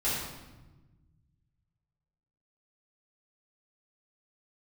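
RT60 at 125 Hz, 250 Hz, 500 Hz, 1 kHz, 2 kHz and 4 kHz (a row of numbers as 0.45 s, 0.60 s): 2.5 s, 1.9 s, 1.2 s, 1.1 s, 0.95 s, 0.85 s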